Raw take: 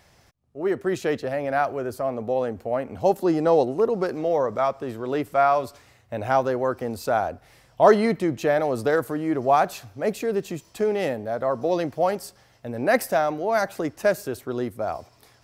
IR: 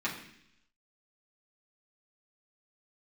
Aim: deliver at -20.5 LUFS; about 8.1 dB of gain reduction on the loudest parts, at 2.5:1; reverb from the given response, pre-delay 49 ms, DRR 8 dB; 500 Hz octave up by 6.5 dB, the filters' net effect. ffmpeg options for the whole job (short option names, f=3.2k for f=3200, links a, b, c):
-filter_complex "[0:a]equalizer=f=500:t=o:g=8,acompressor=threshold=-17dB:ratio=2.5,asplit=2[a][b];[1:a]atrim=start_sample=2205,adelay=49[c];[b][c]afir=irnorm=-1:irlink=0,volume=-15dB[d];[a][d]amix=inputs=2:normalize=0,volume=1.5dB"